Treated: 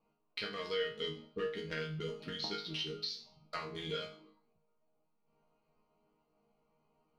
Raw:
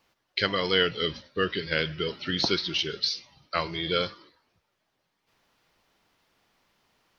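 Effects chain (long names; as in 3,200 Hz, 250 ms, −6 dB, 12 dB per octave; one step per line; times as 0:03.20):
adaptive Wiener filter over 25 samples
downward compressor 10 to 1, threshold −33 dBFS, peak gain reduction 15.5 dB
resonators tuned to a chord D#3 sus4, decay 0.43 s
level +15.5 dB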